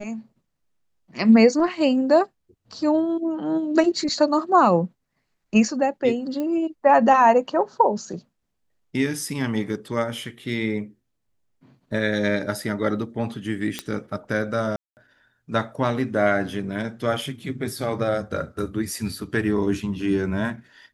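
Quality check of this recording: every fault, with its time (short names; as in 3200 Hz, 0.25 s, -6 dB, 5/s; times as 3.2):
6.4 pop -17 dBFS
13.79 pop -11 dBFS
14.76–14.97 gap 0.209 s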